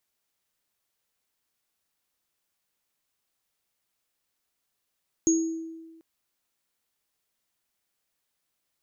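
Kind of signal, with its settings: sine partials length 0.74 s, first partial 326 Hz, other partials 6630 Hz, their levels -2.5 dB, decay 1.36 s, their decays 0.49 s, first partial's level -18 dB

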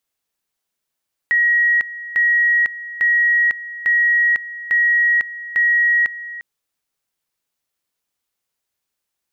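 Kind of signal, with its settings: two-level tone 1900 Hz -12 dBFS, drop 16 dB, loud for 0.50 s, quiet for 0.35 s, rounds 6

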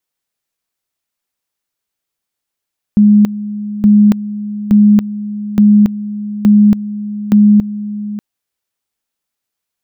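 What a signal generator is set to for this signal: two-level tone 208 Hz -3.5 dBFS, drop 15 dB, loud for 0.28 s, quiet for 0.59 s, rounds 6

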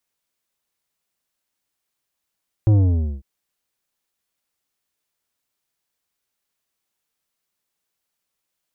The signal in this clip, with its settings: sub drop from 110 Hz, over 0.55 s, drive 10 dB, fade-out 0.50 s, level -12 dB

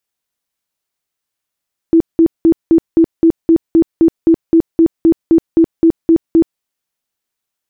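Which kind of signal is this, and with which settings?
tone bursts 329 Hz, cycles 24, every 0.26 s, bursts 18, -4.5 dBFS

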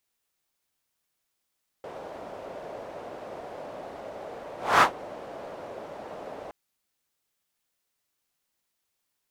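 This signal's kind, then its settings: whoosh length 4.67 s, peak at 2.97, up 0.25 s, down 0.12 s, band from 600 Hz, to 1200 Hz, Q 2.4, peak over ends 24 dB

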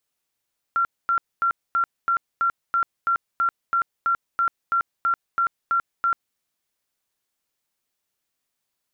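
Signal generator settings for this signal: tone bursts 1370 Hz, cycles 122, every 0.33 s, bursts 17, -17.5 dBFS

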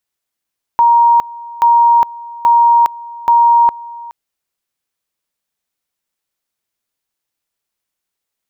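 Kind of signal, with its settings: two-level tone 940 Hz -5.5 dBFS, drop 21 dB, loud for 0.41 s, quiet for 0.42 s, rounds 4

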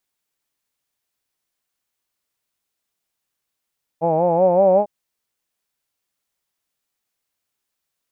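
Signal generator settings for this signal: formant-synthesis vowel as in hawed, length 0.85 s, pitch 159 Hz, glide +4 st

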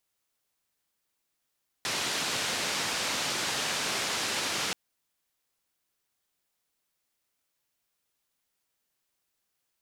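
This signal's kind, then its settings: noise band 130–5700 Hz, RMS -31 dBFS 2.88 s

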